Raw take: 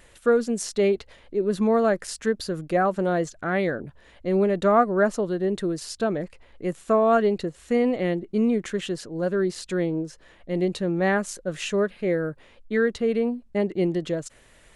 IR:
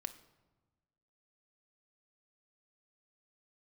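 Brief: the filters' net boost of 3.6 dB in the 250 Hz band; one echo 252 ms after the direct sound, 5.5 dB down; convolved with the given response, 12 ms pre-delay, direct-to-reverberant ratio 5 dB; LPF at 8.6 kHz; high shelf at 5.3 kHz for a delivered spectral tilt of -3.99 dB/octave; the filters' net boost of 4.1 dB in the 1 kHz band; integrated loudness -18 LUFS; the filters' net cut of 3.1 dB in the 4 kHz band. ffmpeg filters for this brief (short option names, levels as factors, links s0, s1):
-filter_complex "[0:a]lowpass=8600,equalizer=f=250:t=o:g=4.5,equalizer=f=1000:t=o:g=6,equalizer=f=4000:t=o:g=-3,highshelf=f=5300:g=-3,aecho=1:1:252:0.531,asplit=2[s0][s1];[1:a]atrim=start_sample=2205,adelay=12[s2];[s1][s2]afir=irnorm=-1:irlink=0,volume=0.75[s3];[s0][s3]amix=inputs=2:normalize=0,volume=1.26"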